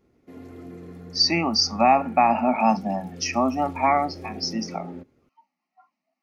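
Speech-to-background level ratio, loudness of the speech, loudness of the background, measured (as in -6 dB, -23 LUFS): 18.5 dB, -22.0 LUFS, -40.5 LUFS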